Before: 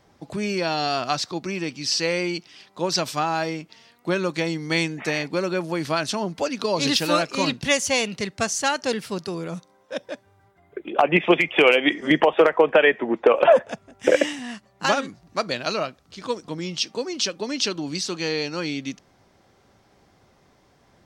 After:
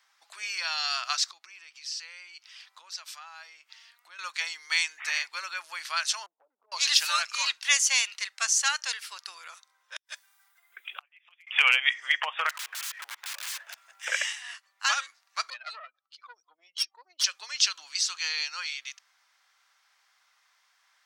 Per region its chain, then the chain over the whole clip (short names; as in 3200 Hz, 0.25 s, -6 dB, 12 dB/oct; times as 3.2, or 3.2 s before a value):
1.26–4.19 low shelf 290 Hz +12 dB + compressor 4:1, threshold -35 dBFS
6.26–6.72 Gaussian blur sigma 16 samples + expander -42 dBFS + compressor 5:1, threshold -35 dBFS
9.96–11.47 RIAA curve recording + flipped gate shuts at -17 dBFS, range -38 dB
12.49–14.06 G.711 law mismatch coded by mu + wrapped overs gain 18.5 dB + compressor 16:1, threshold -31 dBFS
15.5–17.24 spectral contrast raised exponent 2.2 + tube stage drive 20 dB, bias 0.75
whole clip: HPF 1200 Hz 24 dB/oct; dynamic EQ 6700 Hz, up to +5 dB, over -39 dBFS, Q 1.2; gain -1.5 dB